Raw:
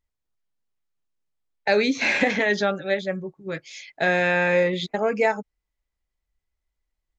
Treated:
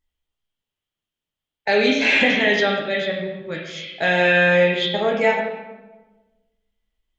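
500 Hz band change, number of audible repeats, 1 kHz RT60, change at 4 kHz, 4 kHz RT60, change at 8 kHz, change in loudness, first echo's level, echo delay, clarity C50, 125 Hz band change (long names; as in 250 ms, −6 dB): +3.5 dB, no echo audible, 1.1 s, +8.5 dB, 0.85 s, can't be measured, +4.0 dB, no echo audible, no echo audible, 2.0 dB, +3.5 dB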